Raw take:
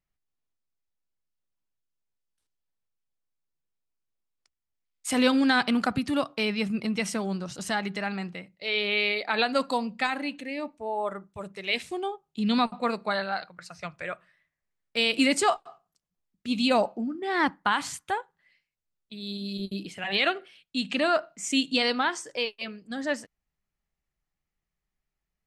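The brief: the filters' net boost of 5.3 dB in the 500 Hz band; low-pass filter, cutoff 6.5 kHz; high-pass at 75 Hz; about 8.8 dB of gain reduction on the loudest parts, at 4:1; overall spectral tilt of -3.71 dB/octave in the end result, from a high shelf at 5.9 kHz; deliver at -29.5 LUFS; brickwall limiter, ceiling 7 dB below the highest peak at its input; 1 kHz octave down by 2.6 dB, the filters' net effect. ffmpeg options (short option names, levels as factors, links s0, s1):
-af "highpass=75,lowpass=6500,equalizer=f=500:t=o:g=8.5,equalizer=f=1000:t=o:g=-8,highshelf=f=5900:g=8,acompressor=threshold=0.0631:ratio=4,volume=1.19,alimiter=limit=0.133:level=0:latency=1"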